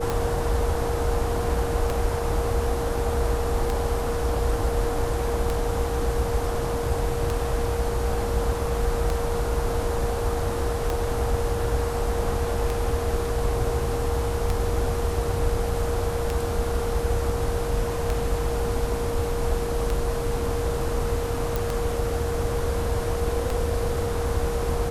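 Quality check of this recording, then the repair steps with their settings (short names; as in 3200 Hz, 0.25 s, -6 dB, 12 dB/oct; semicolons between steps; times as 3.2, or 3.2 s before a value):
tick 33 1/3 rpm
tone 470 Hz -28 dBFS
21.56 pop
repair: de-click; notch 470 Hz, Q 30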